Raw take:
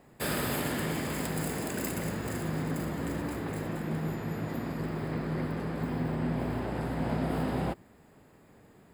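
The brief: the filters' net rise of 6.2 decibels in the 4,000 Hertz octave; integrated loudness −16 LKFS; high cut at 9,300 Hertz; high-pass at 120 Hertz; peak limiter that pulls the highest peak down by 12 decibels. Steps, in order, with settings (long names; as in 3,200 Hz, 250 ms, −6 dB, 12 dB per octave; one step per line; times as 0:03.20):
high-pass filter 120 Hz
low-pass filter 9,300 Hz
parametric band 4,000 Hz +8 dB
level +23.5 dB
brickwall limiter −7.5 dBFS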